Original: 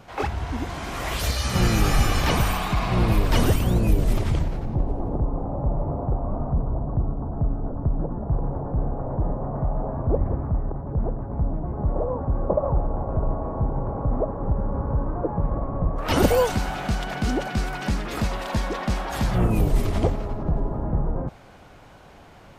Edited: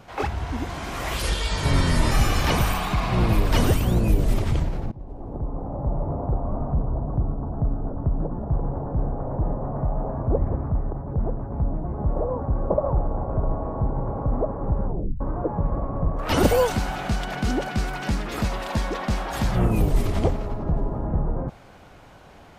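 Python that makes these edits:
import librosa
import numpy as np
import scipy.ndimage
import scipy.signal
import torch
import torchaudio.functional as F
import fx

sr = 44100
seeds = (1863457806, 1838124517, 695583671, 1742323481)

y = fx.edit(x, sr, fx.speed_span(start_s=1.22, length_s=0.69, speed=0.77),
    fx.fade_in_from(start_s=4.71, length_s=1.49, curve='qsin', floor_db=-20.5),
    fx.tape_stop(start_s=14.64, length_s=0.36), tone=tone)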